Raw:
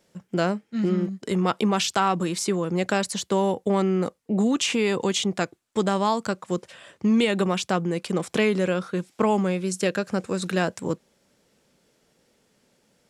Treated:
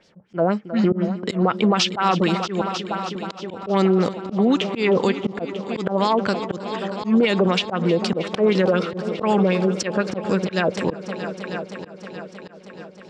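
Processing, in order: LFO low-pass sine 4 Hz 520–5500 Hz; 2.61–3.51 s: inverted gate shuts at -19 dBFS, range -27 dB; on a send: multi-head delay 315 ms, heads all three, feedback 57%, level -18 dB; on the sum: slow attack 141 ms; peak limiter -15.5 dBFS, peak gain reduction 9 dB; trim +6 dB

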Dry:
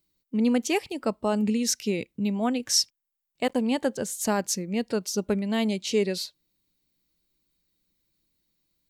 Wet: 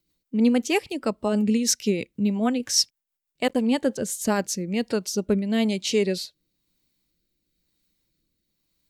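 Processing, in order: rotary cabinet horn 6.3 Hz, later 1 Hz, at 3.82 s; trim +4.5 dB

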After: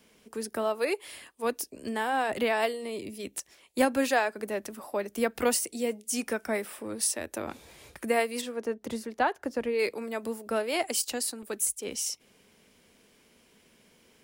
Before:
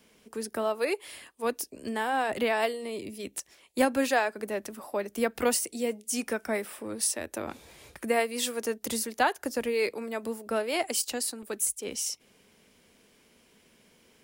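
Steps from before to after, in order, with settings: 8.40–9.78 s: low-pass 1.1 kHz -> 2.1 kHz 6 dB/octave

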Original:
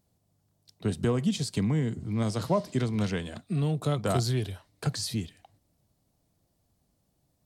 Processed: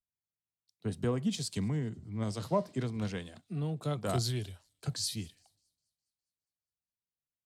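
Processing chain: vibrato 0.37 Hz 43 cents; feedback echo behind a high-pass 205 ms, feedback 74%, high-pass 5 kHz, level -21 dB; three bands expanded up and down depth 70%; trim -6.5 dB

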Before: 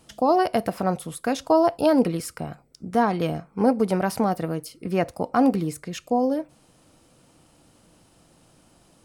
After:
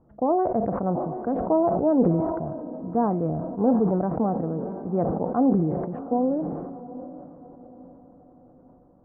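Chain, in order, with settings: Bessel low-pass 720 Hz, order 6; on a send: echo that smears into a reverb 745 ms, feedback 44%, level -15 dB; on the sum: decay stretcher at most 33 dB/s; trim -1 dB

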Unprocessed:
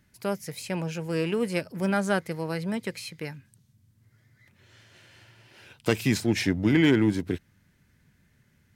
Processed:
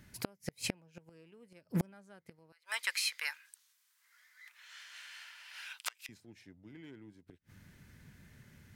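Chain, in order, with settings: 2.52–6.09 s: high-pass 1.1 kHz 24 dB/octave; inverted gate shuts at -24 dBFS, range -37 dB; trim +5.5 dB

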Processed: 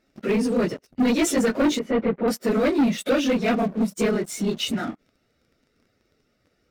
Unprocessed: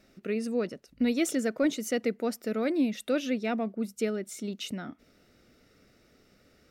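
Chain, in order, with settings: phase randomisation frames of 50 ms; treble shelf 7.4 kHz -5 dB; waveshaping leveller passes 3; 1.79–2.28 s: distance through air 480 m

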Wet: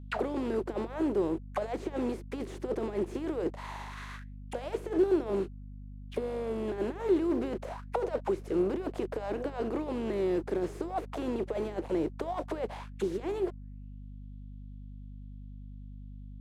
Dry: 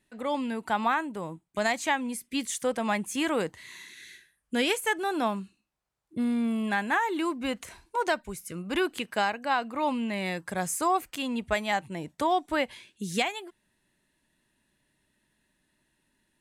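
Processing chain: spectral contrast reduction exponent 0.43; compressor with a negative ratio -32 dBFS, ratio -0.5; waveshaping leveller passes 5; auto-wah 370–3300 Hz, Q 5.3, down, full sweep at -16.5 dBFS; hum 50 Hz, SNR 11 dB

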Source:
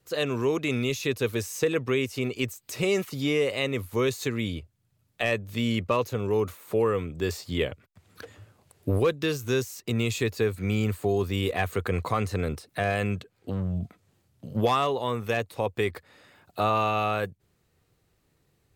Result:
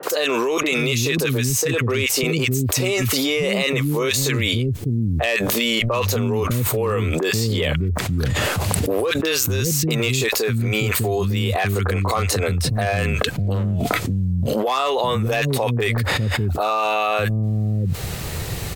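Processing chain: peaking EQ 320 Hz -4.5 dB 1.5 oct; hard clipper -17 dBFS, distortion -28 dB; three bands offset in time mids, highs, lows 30/600 ms, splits 280/1300 Hz; level flattener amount 100%; trim +3 dB

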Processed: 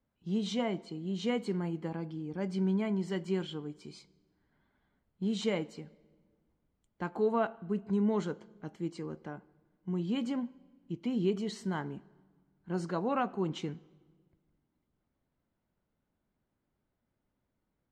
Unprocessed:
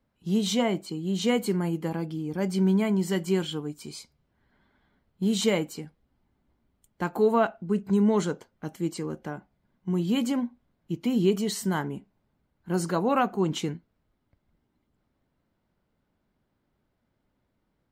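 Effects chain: distance through air 100 m; on a send: reverberation RT60 1.5 s, pre-delay 18 ms, DRR 21.5 dB; on the sum: trim -7 dB

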